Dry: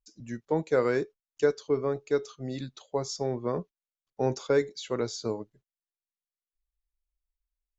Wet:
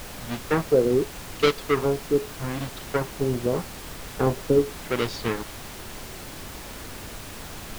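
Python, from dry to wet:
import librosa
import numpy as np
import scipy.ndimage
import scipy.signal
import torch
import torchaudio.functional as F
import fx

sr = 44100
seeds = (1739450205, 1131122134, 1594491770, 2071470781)

y = fx.halfwave_hold(x, sr)
y = fx.filter_lfo_lowpass(y, sr, shape='sine', hz=0.83, low_hz=360.0, high_hz=3900.0, q=1.5)
y = fx.dmg_noise_colour(y, sr, seeds[0], colour='pink', level_db=-38.0)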